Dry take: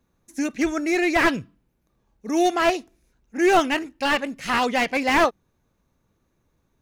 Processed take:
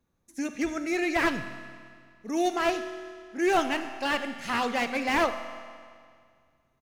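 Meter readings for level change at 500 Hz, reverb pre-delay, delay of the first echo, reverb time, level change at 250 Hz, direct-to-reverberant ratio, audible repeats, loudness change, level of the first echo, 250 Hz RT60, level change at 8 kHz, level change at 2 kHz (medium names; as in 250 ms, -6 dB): -6.0 dB, 26 ms, 76 ms, 2.1 s, -6.0 dB, 8.5 dB, 1, -6.5 dB, -18.5 dB, 2.1 s, -6.0 dB, -6.0 dB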